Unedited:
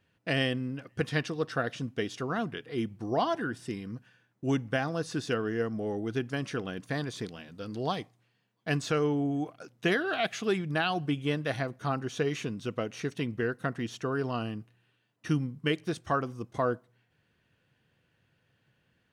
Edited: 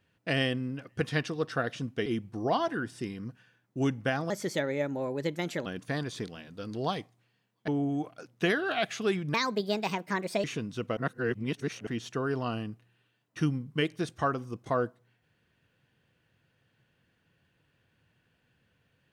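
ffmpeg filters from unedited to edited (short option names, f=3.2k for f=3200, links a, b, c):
-filter_complex "[0:a]asplit=9[a][b][c][d][e][f][g][h][i];[a]atrim=end=2.062[j];[b]atrim=start=2.728:end=4.974[k];[c]atrim=start=4.97:end=6.67,asetpts=PTS-STARTPTS,asetrate=55125,aresample=44100[l];[d]atrim=start=6.666:end=8.692[m];[e]atrim=start=9.098:end=10.764[n];[f]atrim=start=10.76:end=12.32,asetpts=PTS-STARTPTS,asetrate=62622,aresample=44100[o];[g]atrim=start=12.316:end=12.852[p];[h]atrim=start=12.848:end=13.752,asetpts=PTS-STARTPTS,areverse[q];[i]atrim=start=13.748[r];[j][k]acrossfade=d=0.004:c1=hsin:c2=hsin[s];[s][l]acrossfade=d=0.004:c1=hsin:c2=hsin[t];[t][m]acrossfade=d=0.004:c1=hsin:c2=hsin[u];[u][n]acrossfade=d=0.004:c1=hsin:c2=hsin[v];[v][o]acrossfade=d=0.004:c1=hsin:c2=hsin[w];[w][p]acrossfade=d=0.004:c1=hsin:c2=hsin[x];[x][q]acrossfade=d=0.004:c1=hsin:c2=hsin[y];[y][r]acrossfade=d=0.004:c1=hsin:c2=hsin"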